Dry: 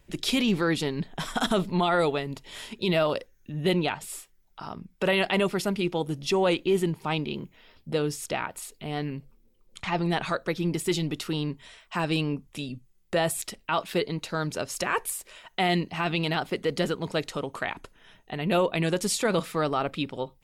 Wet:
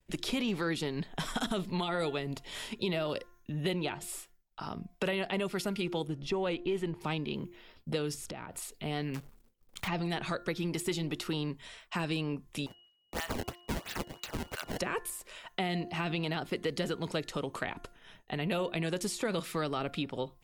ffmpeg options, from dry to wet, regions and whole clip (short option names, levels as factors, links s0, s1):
-filter_complex "[0:a]asettb=1/sr,asplit=3[s0][s1][s2];[s0]atrim=end=6.074[s3];[s1]atrim=start=6.07:end=7.01,asetpts=PTS-STARTPTS,afade=t=in:d=0.004:c=qsin,afade=t=out:st=0.936:d=0.004:c=qsin,lowpass=f=1500:p=1,asubboost=boost=10:cutoff=73[s4];[s2]atrim=start=7.006[s5];[s3][s4]acrossfade=d=0.004:c1=hsin:c2=qsin[s6];[s6][s5]acrossfade=d=0.004:c1=qsin:c2=hsin,asettb=1/sr,asplit=3[s7][s8][s9];[s7]atrim=end=8.144[s10];[s8]atrim=start=8.14:end=8.56,asetpts=PTS-STARTPTS,afade=t=in:d=0.004:c=qsin,afade=t=out:st=0.416:d=0.004:c=qsin,lowshelf=f=460:g=10.5,acompressor=threshold=0.0141:ratio=16:attack=3.2:release=140:knee=1:detection=peak[s11];[s9]atrim=start=8.556[s12];[s10][s11]acrossfade=d=0.004:c1=hsin:c2=qsin[s13];[s13][s12]acrossfade=d=0.004:c1=qsin:c2=hsin,asettb=1/sr,asplit=3[s14][s15][s16];[s14]atrim=end=9.144[s17];[s15]atrim=start=9.14:end=9.88,asetpts=PTS-STARTPTS,afade=t=in:d=0.004:c=qsin,afade=t=out:st=0.736:d=0.004:c=qsin,acrusher=bits=2:mode=log:mix=0:aa=0.000001,aeval=exprs='val(0)+0.000224*(sin(2*PI*50*n/s)+sin(2*PI*2*50*n/s)/2+sin(2*PI*3*50*n/s)/3+sin(2*PI*4*50*n/s)/4+sin(2*PI*5*50*n/s)/5)':c=same[s18];[s16]atrim=start=9.876[s19];[s17][s18]acrossfade=d=0.004:c1=hsin:c2=qsin[s20];[s20][s19]acrossfade=d=0.004:c1=qsin:c2=hsin,asettb=1/sr,asplit=3[s21][s22][s23];[s21]atrim=end=12.664[s24];[s22]atrim=start=12.66:end=14.79,asetpts=PTS-STARTPTS,afade=t=in:d=0.004:c=qsin,afade=t=out:st=2.126:d=0.004:c=qsin,highpass=f=1100:w=0.5412,highpass=f=1100:w=1.3066,acrusher=samples=21:mix=1:aa=0.000001:lfo=1:lforange=33.6:lforate=3,aeval=exprs='val(0)+0.00126*sin(2*PI*2900*n/s)':c=same[s25];[s23]atrim=start=14.786[s26];[s24][s25]acrossfade=d=0.004:c1=hsin:c2=qsin[s27];[s27][s26]acrossfade=d=0.004:c1=qsin:c2=hsin,bandreject=f=350.6:t=h:w=4,bandreject=f=701.2:t=h:w=4,bandreject=f=1051.8:t=h:w=4,bandreject=f=1402.4:t=h:w=4,bandreject=f=1753:t=h:w=4,agate=range=0.0224:threshold=0.00251:ratio=3:detection=peak,acrossover=split=520|1600[s28][s29][s30];[s28]acompressor=threshold=0.0224:ratio=4[s31];[s29]acompressor=threshold=0.00891:ratio=4[s32];[s30]acompressor=threshold=0.0126:ratio=4[s33];[s31][s32][s33]amix=inputs=3:normalize=0"